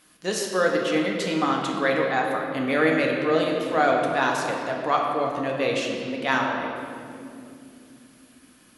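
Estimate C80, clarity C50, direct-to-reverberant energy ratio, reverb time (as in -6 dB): 3.0 dB, 2.0 dB, -0.5 dB, 2.8 s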